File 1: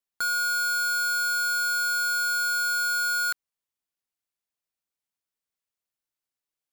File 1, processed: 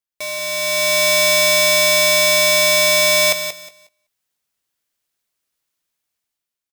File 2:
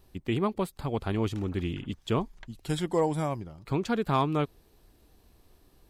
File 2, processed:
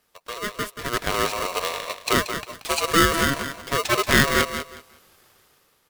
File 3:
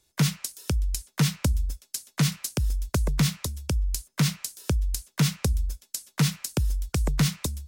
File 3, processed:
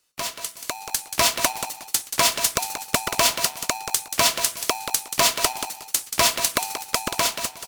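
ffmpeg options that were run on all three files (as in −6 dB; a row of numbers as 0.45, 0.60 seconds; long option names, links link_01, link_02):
-filter_complex "[0:a]highpass=frequency=630:poles=1,asplit=2[link_01][link_02];[link_02]aecho=0:1:200:0.075[link_03];[link_01][link_03]amix=inputs=2:normalize=0,dynaudnorm=framelen=120:gausssize=13:maxgain=12.5dB,asplit=2[link_04][link_05];[link_05]aecho=0:1:181|362|543:0.355|0.0781|0.0172[link_06];[link_04][link_06]amix=inputs=2:normalize=0,aeval=exprs='val(0)*sgn(sin(2*PI*830*n/s))':channel_layout=same"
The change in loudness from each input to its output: +11.5, +7.5, +5.5 LU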